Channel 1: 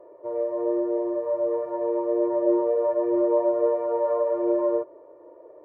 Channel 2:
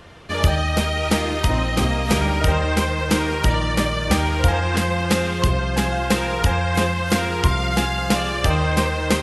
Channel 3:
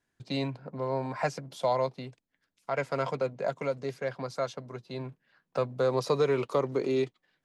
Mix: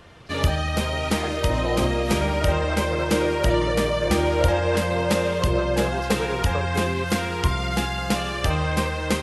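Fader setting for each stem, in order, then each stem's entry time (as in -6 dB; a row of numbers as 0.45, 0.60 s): -2.5, -4.0, -3.5 dB; 1.05, 0.00, 0.00 s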